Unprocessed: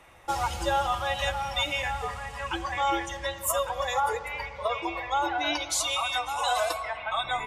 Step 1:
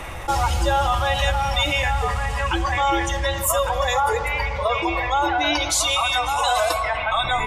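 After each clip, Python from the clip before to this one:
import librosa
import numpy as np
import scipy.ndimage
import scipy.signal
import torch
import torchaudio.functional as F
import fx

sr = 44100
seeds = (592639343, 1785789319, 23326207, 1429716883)

y = fx.low_shelf(x, sr, hz=100.0, db=11.0)
y = fx.env_flatten(y, sr, amount_pct=50)
y = F.gain(torch.from_numpy(y), 4.5).numpy()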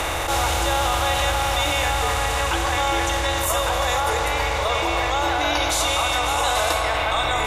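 y = fx.bin_compress(x, sr, power=0.4)
y = fx.attack_slew(y, sr, db_per_s=130.0)
y = F.gain(torch.from_numpy(y), -6.5).numpy()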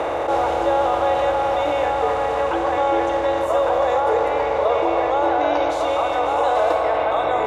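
y = fx.bandpass_q(x, sr, hz=500.0, q=1.5)
y = F.gain(torch.from_numpy(y), 8.5).numpy()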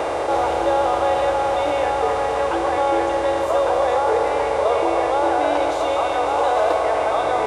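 y = fx.dmg_buzz(x, sr, base_hz=400.0, harmonics=26, level_db=-37.0, tilt_db=-5, odd_only=False)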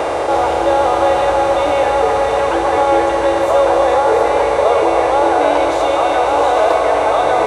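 y = x + 10.0 ** (-7.5 / 20.0) * np.pad(x, (int(703 * sr / 1000.0), 0))[:len(x)]
y = F.gain(torch.from_numpy(y), 5.0).numpy()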